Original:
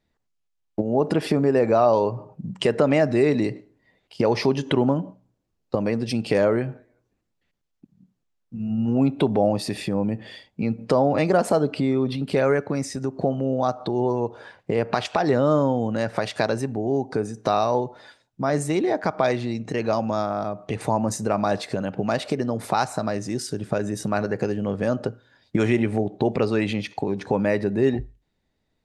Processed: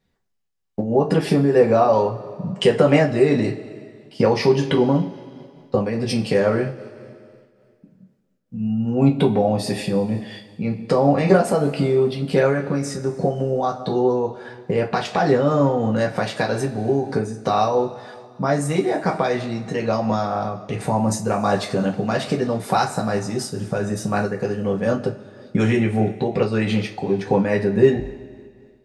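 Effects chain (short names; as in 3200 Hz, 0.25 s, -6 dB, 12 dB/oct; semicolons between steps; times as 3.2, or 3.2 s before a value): two-slope reverb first 0.21 s, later 2.2 s, from -21 dB, DRR -1 dB; noise-modulated level, depth 60%; gain +2 dB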